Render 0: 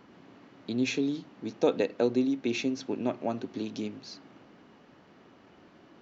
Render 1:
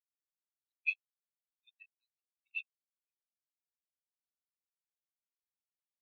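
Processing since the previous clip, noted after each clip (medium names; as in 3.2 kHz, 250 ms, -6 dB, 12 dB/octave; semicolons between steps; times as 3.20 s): local Wiener filter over 25 samples; inverse Chebyshev high-pass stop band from 450 Hz, stop band 70 dB; spectral contrast expander 4:1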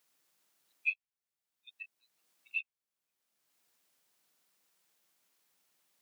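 dynamic bell 2.3 kHz, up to +8 dB, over -49 dBFS, Q 2; three bands compressed up and down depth 70%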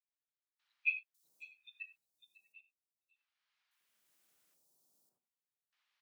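trance gate "...xxxxxxx..." 76 bpm -24 dB; three bands offset in time mids, highs, lows 550/640 ms, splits 930/4400 Hz; gated-style reverb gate 110 ms flat, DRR 10 dB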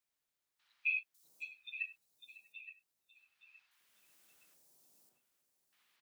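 peak limiter -32 dBFS, peak gain reduction 11 dB; feedback delay 869 ms, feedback 30%, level -13 dB; trim +7 dB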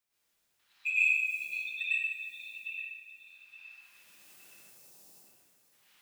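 in parallel at -4 dB: saturation -33.5 dBFS, distortion -11 dB; on the sum: plate-style reverb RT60 1.5 s, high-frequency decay 0.9×, pre-delay 90 ms, DRR -9.5 dB; trim -2 dB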